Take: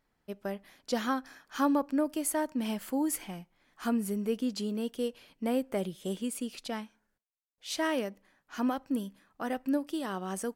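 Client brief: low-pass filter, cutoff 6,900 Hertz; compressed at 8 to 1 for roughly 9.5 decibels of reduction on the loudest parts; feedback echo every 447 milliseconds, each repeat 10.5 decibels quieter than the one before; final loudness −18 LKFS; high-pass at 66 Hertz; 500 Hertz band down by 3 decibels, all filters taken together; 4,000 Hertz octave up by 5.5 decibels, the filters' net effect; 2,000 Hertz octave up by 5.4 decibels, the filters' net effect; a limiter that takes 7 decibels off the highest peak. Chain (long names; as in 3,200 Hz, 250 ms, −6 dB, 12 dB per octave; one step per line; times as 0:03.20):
high-pass filter 66 Hz
low-pass filter 6,900 Hz
parametric band 500 Hz −4 dB
parametric band 2,000 Hz +6 dB
parametric band 4,000 Hz +5.5 dB
downward compressor 8 to 1, threshold −34 dBFS
brickwall limiter −30.5 dBFS
repeating echo 447 ms, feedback 30%, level −10.5 dB
level +22.5 dB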